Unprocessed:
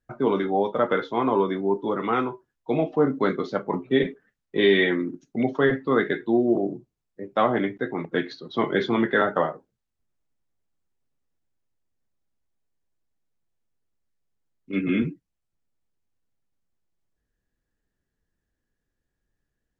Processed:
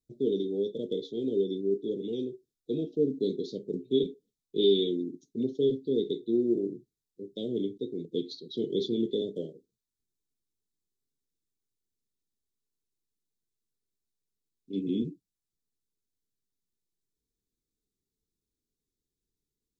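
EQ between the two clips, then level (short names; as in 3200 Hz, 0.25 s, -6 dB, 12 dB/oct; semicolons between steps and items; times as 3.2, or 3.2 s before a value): Chebyshev band-stop 440–3600 Hz, order 4; low shelf 290 Hz -10.5 dB; 0.0 dB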